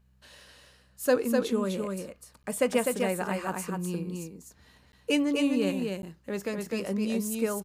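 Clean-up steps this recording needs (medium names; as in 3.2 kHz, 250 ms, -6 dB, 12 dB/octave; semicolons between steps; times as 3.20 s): de-hum 63.8 Hz, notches 3; interpolate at 2.43/4.92/6.02 s, 11 ms; inverse comb 252 ms -4 dB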